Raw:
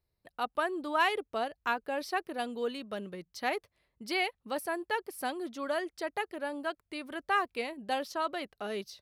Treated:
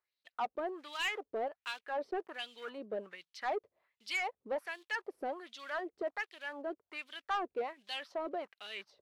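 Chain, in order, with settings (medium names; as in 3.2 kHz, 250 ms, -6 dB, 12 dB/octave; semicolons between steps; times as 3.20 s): block-companded coder 5-bit; in parallel at -12 dB: wavefolder -32.5 dBFS; on the sum: wah-wah 1.3 Hz 390–3600 Hz, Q 2.5; saturation -33 dBFS, distortion -14 dB; trim +4.5 dB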